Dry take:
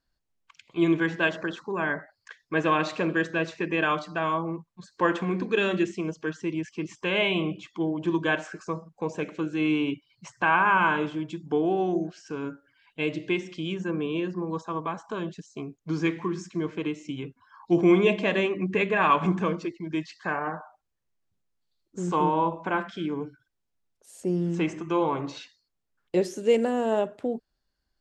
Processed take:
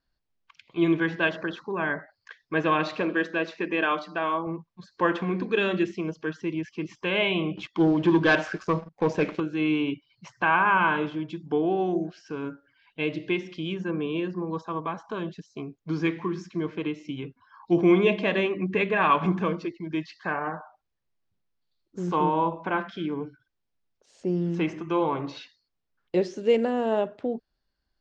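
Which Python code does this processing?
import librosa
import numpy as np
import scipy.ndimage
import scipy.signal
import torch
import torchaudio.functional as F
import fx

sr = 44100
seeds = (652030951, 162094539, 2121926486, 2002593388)

y = fx.brickwall_highpass(x, sr, low_hz=170.0, at=(3.01, 4.47))
y = fx.leveller(y, sr, passes=2, at=(7.57, 9.4))
y = scipy.signal.sosfilt(scipy.signal.butter(4, 5400.0, 'lowpass', fs=sr, output='sos'), y)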